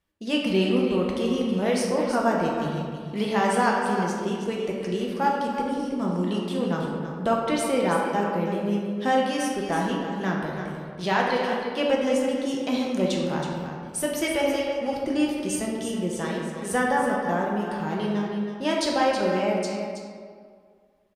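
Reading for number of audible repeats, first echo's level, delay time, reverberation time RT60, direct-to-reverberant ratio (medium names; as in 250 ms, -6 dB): 1, -9.0 dB, 323 ms, 2.0 s, -3.0 dB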